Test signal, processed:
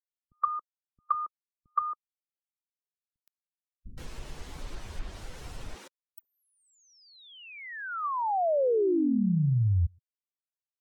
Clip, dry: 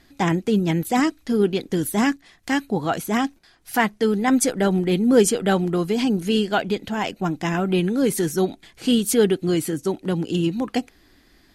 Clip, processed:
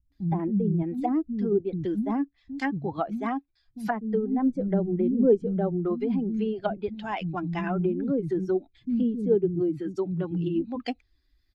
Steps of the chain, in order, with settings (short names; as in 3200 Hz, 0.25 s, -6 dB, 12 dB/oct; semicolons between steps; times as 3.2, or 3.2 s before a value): per-bin expansion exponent 1.5; bands offset in time lows, highs 0.12 s, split 230 Hz; treble ducked by the level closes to 510 Hz, closed at -20.5 dBFS